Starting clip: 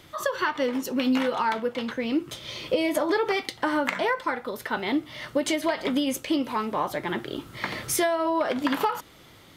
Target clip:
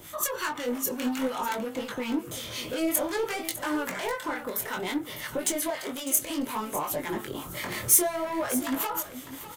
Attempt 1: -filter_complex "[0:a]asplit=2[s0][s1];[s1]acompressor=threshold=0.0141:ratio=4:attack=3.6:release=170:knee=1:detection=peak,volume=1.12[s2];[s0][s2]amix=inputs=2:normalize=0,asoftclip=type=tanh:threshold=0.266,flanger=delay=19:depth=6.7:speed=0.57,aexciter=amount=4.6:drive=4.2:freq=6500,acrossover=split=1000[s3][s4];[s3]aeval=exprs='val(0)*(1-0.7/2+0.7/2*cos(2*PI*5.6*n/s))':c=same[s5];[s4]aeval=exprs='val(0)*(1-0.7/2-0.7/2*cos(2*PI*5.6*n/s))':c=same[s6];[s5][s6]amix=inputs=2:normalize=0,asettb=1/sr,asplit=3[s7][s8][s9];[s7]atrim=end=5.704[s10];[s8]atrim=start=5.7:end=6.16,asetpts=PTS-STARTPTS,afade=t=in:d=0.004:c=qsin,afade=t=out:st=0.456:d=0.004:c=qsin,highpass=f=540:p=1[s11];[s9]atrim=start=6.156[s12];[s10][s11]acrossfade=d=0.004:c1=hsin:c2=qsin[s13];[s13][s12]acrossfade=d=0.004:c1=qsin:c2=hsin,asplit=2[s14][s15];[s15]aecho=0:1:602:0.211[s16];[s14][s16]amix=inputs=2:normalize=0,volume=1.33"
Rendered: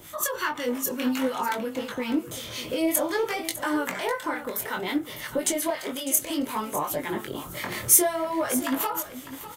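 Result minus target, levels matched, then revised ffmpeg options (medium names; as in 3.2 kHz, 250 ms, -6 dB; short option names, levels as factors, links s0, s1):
saturation: distortion -14 dB
-filter_complex "[0:a]asplit=2[s0][s1];[s1]acompressor=threshold=0.0141:ratio=4:attack=3.6:release=170:knee=1:detection=peak,volume=1.12[s2];[s0][s2]amix=inputs=2:normalize=0,asoftclip=type=tanh:threshold=0.0841,flanger=delay=19:depth=6.7:speed=0.57,aexciter=amount=4.6:drive=4.2:freq=6500,acrossover=split=1000[s3][s4];[s3]aeval=exprs='val(0)*(1-0.7/2+0.7/2*cos(2*PI*5.6*n/s))':c=same[s5];[s4]aeval=exprs='val(0)*(1-0.7/2-0.7/2*cos(2*PI*5.6*n/s))':c=same[s6];[s5][s6]amix=inputs=2:normalize=0,asettb=1/sr,asplit=3[s7][s8][s9];[s7]atrim=end=5.704[s10];[s8]atrim=start=5.7:end=6.16,asetpts=PTS-STARTPTS,afade=t=in:d=0.004:c=qsin,afade=t=out:st=0.456:d=0.004:c=qsin,highpass=f=540:p=1[s11];[s9]atrim=start=6.156[s12];[s10][s11]acrossfade=d=0.004:c1=hsin:c2=qsin[s13];[s13][s12]acrossfade=d=0.004:c1=qsin:c2=hsin,asplit=2[s14][s15];[s15]aecho=0:1:602:0.211[s16];[s14][s16]amix=inputs=2:normalize=0,volume=1.33"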